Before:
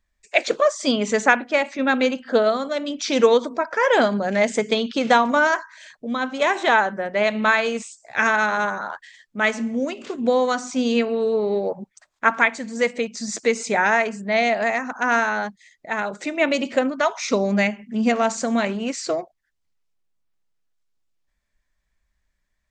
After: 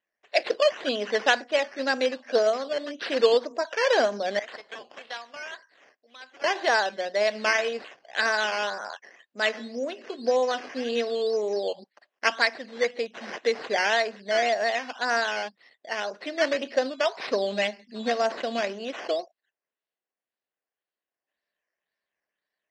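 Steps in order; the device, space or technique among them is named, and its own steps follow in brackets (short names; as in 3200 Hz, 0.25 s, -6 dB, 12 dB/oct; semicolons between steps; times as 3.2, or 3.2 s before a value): 4.39–6.44 pre-emphasis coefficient 0.97; circuit-bent sampling toy (decimation with a swept rate 9×, swing 60% 1.9 Hz; speaker cabinet 500–4700 Hz, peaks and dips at 910 Hz -8 dB, 1300 Hz -9 dB, 2300 Hz -7 dB, 3500 Hz -5 dB)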